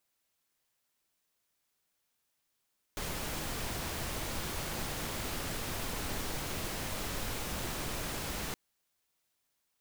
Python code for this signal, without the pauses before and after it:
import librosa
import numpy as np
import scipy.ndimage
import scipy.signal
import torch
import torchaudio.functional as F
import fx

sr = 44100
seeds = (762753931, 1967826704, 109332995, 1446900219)

y = fx.noise_colour(sr, seeds[0], length_s=5.57, colour='pink', level_db=-37.0)